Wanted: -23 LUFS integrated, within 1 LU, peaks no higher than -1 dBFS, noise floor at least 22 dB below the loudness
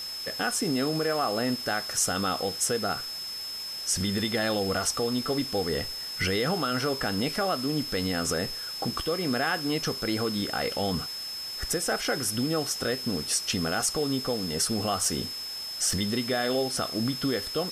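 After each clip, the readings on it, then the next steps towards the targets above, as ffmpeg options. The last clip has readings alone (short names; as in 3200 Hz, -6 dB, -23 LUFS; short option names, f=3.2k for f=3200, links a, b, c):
steady tone 5200 Hz; tone level -34 dBFS; noise floor -36 dBFS; noise floor target -50 dBFS; loudness -28.0 LUFS; peak -13.0 dBFS; loudness target -23.0 LUFS
-> -af "bandreject=f=5.2k:w=30"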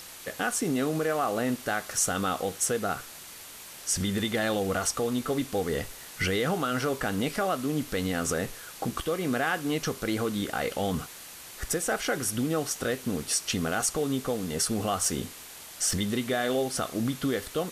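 steady tone none; noise floor -45 dBFS; noise floor target -51 dBFS
-> -af "afftdn=nr=6:nf=-45"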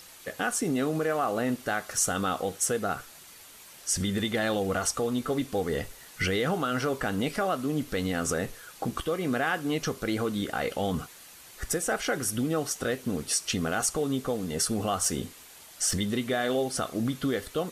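noise floor -50 dBFS; noise floor target -51 dBFS
-> -af "afftdn=nr=6:nf=-50"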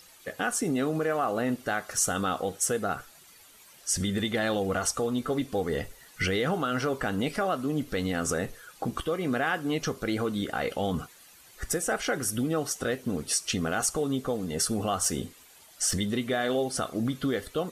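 noise floor -54 dBFS; loudness -29.0 LUFS; peak -12.5 dBFS; loudness target -23.0 LUFS
-> -af "volume=6dB"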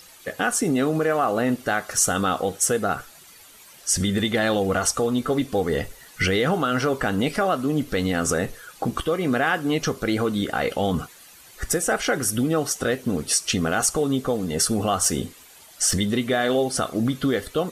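loudness -23.0 LUFS; peak -6.5 dBFS; noise floor -48 dBFS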